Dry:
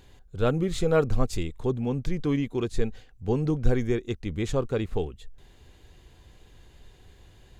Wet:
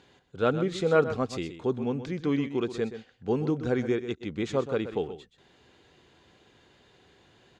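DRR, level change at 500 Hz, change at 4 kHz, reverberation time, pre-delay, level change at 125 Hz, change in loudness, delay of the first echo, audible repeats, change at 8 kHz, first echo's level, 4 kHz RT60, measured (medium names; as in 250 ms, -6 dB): no reverb, 0.0 dB, -0.5 dB, no reverb, no reverb, -6.0 dB, -1.0 dB, 127 ms, 1, no reading, -11.5 dB, no reverb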